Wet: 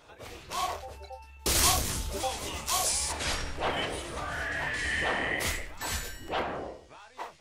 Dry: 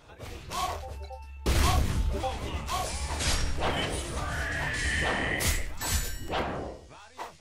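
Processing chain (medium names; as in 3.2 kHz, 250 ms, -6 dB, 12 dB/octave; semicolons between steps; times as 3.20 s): tone controls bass -8 dB, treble 0 dB, from 1.39 s treble +12 dB, from 3.11 s treble -5 dB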